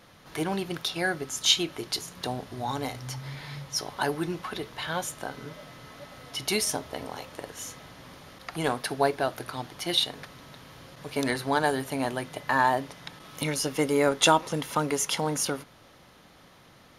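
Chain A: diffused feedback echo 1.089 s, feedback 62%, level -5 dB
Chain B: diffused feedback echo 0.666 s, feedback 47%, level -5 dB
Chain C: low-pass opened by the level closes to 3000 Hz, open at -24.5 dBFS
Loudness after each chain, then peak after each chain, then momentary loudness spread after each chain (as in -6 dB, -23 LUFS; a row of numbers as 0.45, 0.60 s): -28.0, -28.0, -28.5 LUFS; -6.0, -6.5, -7.0 dBFS; 11, 12, 20 LU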